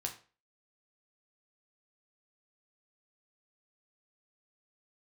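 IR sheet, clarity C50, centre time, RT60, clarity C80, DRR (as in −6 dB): 11.0 dB, 13 ms, 0.35 s, 16.0 dB, 2.0 dB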